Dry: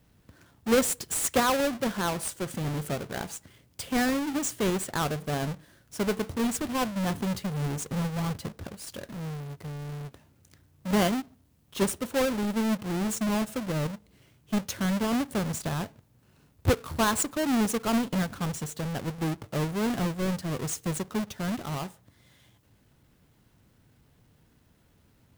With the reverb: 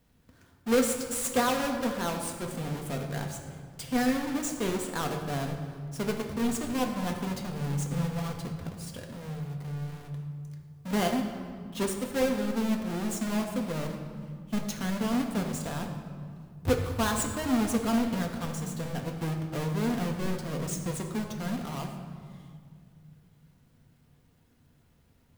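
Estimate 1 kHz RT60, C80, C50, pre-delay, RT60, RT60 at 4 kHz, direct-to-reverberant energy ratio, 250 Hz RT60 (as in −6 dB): 1.9 s, 7.0 dB, 6.0 dB, 4 ms, 2.0 s, 1.3 s, 2.0 dB, 3.0 s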